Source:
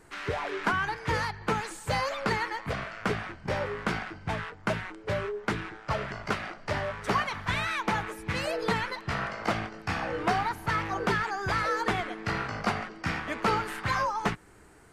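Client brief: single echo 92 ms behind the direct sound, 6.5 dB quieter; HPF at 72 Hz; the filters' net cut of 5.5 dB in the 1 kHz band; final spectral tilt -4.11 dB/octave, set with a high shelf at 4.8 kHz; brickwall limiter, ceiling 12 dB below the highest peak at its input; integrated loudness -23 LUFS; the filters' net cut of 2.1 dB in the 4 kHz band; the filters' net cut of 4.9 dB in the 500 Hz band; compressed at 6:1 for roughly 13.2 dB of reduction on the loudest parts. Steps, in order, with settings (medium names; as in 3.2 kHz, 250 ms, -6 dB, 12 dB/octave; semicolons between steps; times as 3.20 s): high-pass 72 Hz; peaking EQ 500 Hz -4.5 dB; peaking EQ 1 kHz -6 dB; peaking EQ 4 kHz -6.5 dB; treble shelf 4.8 kHz +8.5 dB; compression 6:1, threshold -41 dBFS; peak limiter -38 dBFS; delay 92 ms -6.5 dB; trim +23 dB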